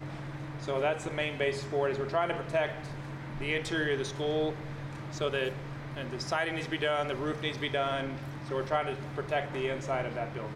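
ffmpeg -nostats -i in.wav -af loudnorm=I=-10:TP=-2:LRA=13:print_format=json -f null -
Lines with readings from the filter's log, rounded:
"input_i" : "-32.9",
"input_tp" : "-17.0",
"input_lra" : "1.5",
"input_thresh" : "-42.9",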